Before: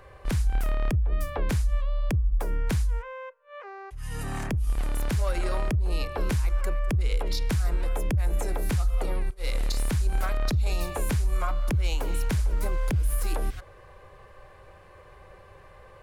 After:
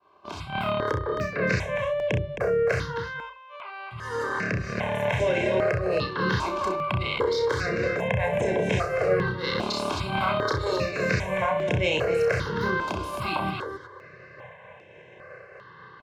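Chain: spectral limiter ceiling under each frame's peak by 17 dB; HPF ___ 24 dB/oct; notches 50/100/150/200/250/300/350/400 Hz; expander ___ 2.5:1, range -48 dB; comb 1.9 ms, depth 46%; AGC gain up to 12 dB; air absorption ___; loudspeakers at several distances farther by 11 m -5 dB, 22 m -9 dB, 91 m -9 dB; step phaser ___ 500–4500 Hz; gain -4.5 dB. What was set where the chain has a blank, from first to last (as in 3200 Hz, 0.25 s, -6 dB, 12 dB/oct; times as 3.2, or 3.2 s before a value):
110 Hz, -45 dBFS, 210 m, 2.5 Hz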